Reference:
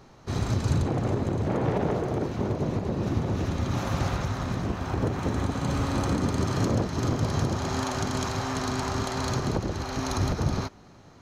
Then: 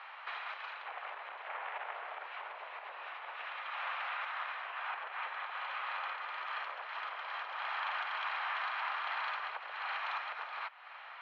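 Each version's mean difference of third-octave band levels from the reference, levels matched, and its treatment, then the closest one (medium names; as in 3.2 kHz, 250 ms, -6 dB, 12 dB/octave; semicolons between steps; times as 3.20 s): 19.5 dB: steep low-pass 2.9 kHz 36 dB/octave; tilt EQ +1.5 dB/octave; compression 3:1, threshold -45 dBFS, peak gain reduction 16 dB; Bessel high-pass 1.3 kHz, order 6; trim +13.5 dB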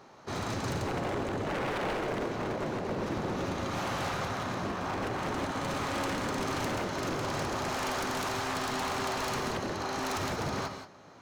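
6.0 dB: high-pass 640 Hz 6 dB/octave; treble shelf 2.1 kHz -7.5 dB; wavefolder -32.5 dBFS; gated-style reverb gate 200 ms rising, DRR 7 dB; trim +4.5 dB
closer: second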